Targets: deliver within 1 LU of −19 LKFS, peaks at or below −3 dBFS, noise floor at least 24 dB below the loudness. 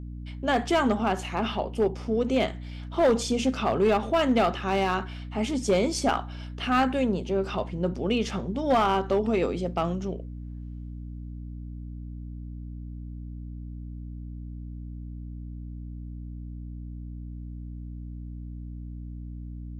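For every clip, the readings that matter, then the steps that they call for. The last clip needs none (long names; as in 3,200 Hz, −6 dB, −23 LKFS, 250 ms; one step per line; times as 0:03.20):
share of clipped samples 0.5%; peaks flattened at −16.0 dBFS; mains hum 60 Hz; hum harmonics up to 300 Hz; level of the hum −35 dBFS; integrated loudness −26.0 LKFS; sample peak −16.0 dBFS; target loudness −19.0 LKFS
→ clipped peaks rebuilt −16 dBFS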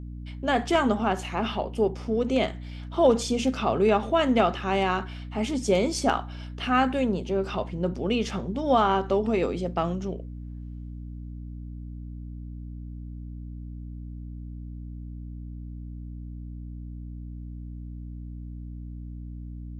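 share of clipped samples 0.0%; mains hum 60 Hz; hum harmonics up to 300 Hz; level of the hum −35 dBFS
→ hum removal 60 Hz, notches 5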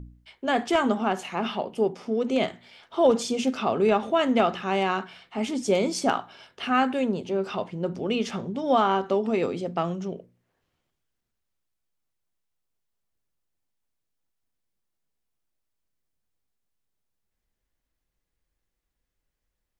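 mains hum none found; integrated loudness −26.0 LKFS; sample peak −8.5 dBFS; target loudness −19.0 LKFS
→ level +7 dB
brickwall limiter −3 dBFS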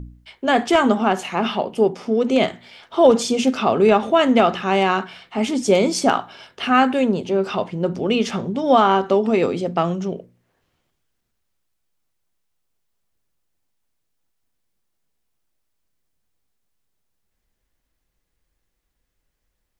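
integrated loudness −19.0 LKFS; sample peak −3.0 dBFS; background noise floor −74 dBFS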